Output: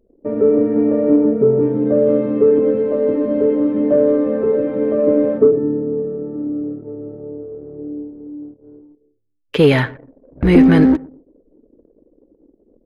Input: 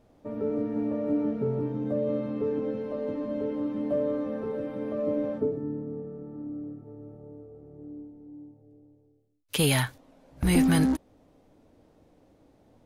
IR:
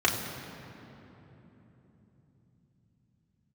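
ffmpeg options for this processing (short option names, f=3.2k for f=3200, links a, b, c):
-filter_complex "[0:a]firequalizer=gain_entry='entry(120,0);entry(410,11);entry(780,0);entry(1900,3);entry(3100,-4);entry(8800,-23)':delay=0.05:min_phase=1,acontrast=33,asettb=1/sr,asplit=3[a][b][c];[a]atrim=end=1.164[d];[b]atrim=start=1.16:end=1.6,asetpts=PTS-STARTPTS,afade=t=in:d=0.004:c=qsin,afade=t=out:st=0.436:d=0.004:c=qsin,highshelf=f=2.2k:g=-11.5[e];[c]atrim=start=1.596[f];[d][e]acrossfade=d=0.004:c1=hsin:c2=qsin[g];[g][f]acrossfade=d=0.004:c1=qsin:c2=hsin,asplit=2[h][i];[i]adelay=121,lowpass=f=2.8k:p=1,volume=-21dB,asplit=2[j][k];[k]adelay=121,lowpass=f=2.8k:p=1,volume=0.37,asplit=2[l][m];[m]adelay=121,lowpass=f=2.8k:p=1,volume=0.37[n];[j][l][n]amix=inputs=3:normalize=0[o];[h][o]amix=inputs=2:normalize=0,anlmdn=0.398,volume=2.5dB"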